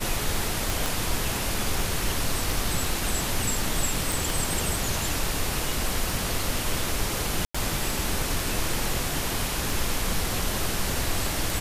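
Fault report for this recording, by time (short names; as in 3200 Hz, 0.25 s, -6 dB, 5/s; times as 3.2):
tick 33 1/3 rpm
0.86 pop
4.12 pop
7.45–7.54 gap 95 ms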